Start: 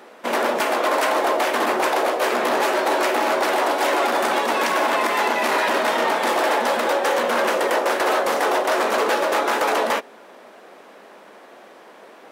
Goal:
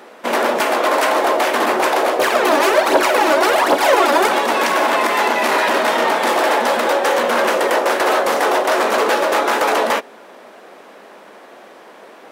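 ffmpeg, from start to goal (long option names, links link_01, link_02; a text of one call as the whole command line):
ffmpeg -i in.wav -filter_complex "[0:a]asettb=1/sr,asplit=3[link_01][link_02][link_03];[link_01]atrim=end=2.194[link_04];[link_02]atrim=start=2.19:end=4.29,asetpts=PTS-STARTPTS,afade=type=in:duration=0.004:curve=qsin,afade=type=out:start_time=2.096:duration=0.004:curve=qsin,aphaser=in_gain=1:out_gain=1:delay=3.6:decay=0.62:speed=1.3:type=triangular[link_05];[link_03]atrim=start=4.286[link_06];[link_04][link_05]acrossfade=duration=0.004:curve1=hsin:curve2=qsin[link_07];[link_07][link_06]acrossfade=duration=0.004:curve1=qsin:curve2=hsin,volume=4dB" out.wav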